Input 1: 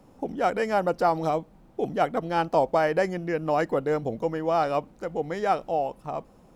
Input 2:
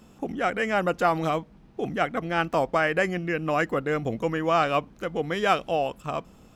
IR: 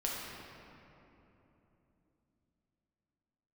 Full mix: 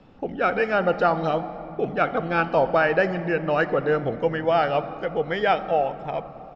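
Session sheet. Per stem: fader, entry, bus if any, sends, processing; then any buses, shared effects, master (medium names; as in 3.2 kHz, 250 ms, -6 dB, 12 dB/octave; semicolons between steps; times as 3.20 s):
+1.5 dB, 0.00 s, send -9.5 dB, peaking EQ 450 Hz -5.5 dB 1.2 oct; band-stop 990 Hz, Q 8.2
-1.0 dB, 0.3 ms, no send, reverb removal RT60 1.2 s; high-pass 330 Hz 24 dB/octave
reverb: on, RT60 3.3 s, pre-delay 6 ms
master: low-pass 4.2 kHz 24 dB/octave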